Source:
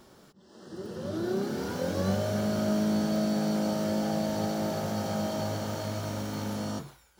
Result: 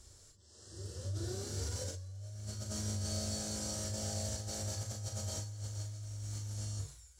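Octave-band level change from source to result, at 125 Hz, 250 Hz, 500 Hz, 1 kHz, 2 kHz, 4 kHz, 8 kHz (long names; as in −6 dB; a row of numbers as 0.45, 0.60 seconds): −4.0, −18.5, −16.0, −17.5, −13.5, −4.0, +3.5 decibels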